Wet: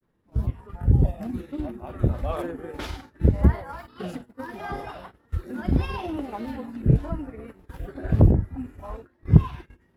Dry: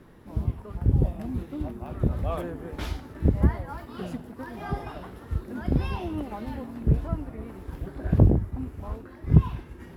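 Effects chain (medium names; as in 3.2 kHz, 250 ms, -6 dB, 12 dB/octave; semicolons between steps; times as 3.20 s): gate -39 dBFS, range -14 dB; spectral noise reduction 8 dB; granulator 100 ms, spray 19 ms, pitch spread up and down by 0 st; trim +4 dB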